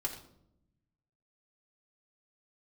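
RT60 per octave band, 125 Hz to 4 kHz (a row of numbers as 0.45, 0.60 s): 1.6, 1.3, 0.90, 0.65, 0.50, 0.50 s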